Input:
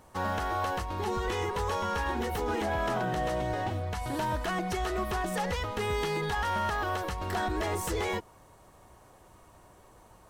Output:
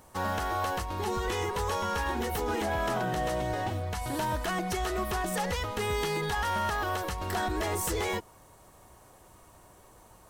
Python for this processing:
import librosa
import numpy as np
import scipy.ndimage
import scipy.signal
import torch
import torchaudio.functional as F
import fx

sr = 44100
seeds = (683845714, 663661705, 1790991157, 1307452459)

y = fx.high_shelf(x, sr, hz=6100.0, db=7.5)